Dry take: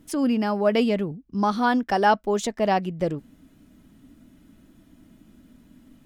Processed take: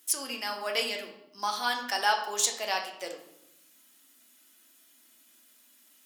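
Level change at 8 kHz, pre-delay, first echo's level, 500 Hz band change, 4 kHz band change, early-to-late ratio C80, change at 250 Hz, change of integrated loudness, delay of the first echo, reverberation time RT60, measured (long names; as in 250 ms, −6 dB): +9.5 dB, 9 ms, no echo audible, −13.0 dB, +4.5 dB, 10.5 dB, −23.5 dB, −6.5 dB, no echo audible, 0.85 s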